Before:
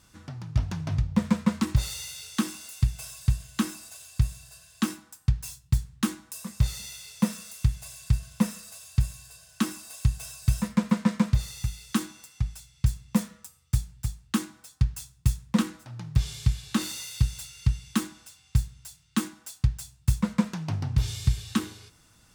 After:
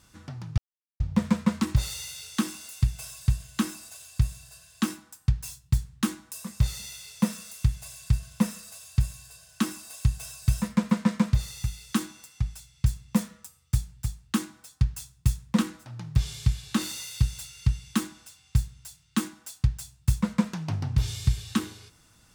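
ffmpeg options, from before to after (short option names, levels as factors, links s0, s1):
-filter_complex "[0:a]asplit=3[s0][s1][s2];[s0]atrim=end=0.58,asetpts=PTS-STARTPTS,afade=t=out:st=0.576:d=0.004:c=hsin[s3];[s1]atrim=start=0.58:end=1,asetpts=PTS-STARTPTS,volume=0[s4];[s2]atrim=start=1,asetpts=PTS-STARTPTS,afade=t=in:d=0.004:c=hsin[s5];[s3][s4][s5]concat=n=3:v=0:a=1"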